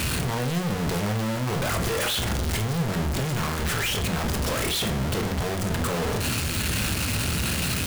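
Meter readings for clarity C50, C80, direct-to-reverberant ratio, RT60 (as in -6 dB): 11.5 dB, 15.5 dB, 5.5 dB, 0.40 s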